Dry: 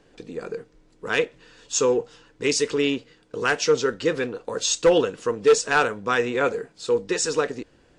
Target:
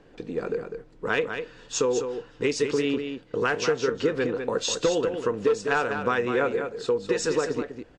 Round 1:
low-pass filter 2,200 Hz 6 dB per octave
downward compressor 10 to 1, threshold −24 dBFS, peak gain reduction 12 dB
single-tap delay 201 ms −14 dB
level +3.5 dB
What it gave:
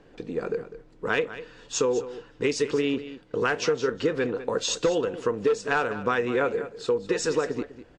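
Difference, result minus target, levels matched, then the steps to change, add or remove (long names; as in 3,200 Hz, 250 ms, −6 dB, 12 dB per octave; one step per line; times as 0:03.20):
echo-to-direct −6.5 dB
change: single-tap delay 201 ms −7.5 dB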